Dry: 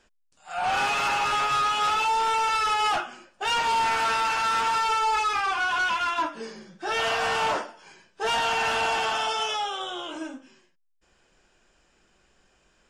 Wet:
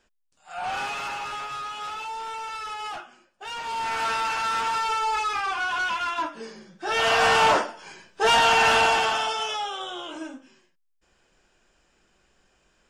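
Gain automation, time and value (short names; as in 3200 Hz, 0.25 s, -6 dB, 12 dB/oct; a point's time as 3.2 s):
0.63 s -4 dB
1.58 s -10 dB
3.54 s -10 dB
4.04 s -1.5 dB
6.74 s -1.5 dB
7.21 s +6.5 dB
8.76 s +6.5 dB
9.38 s -1 dB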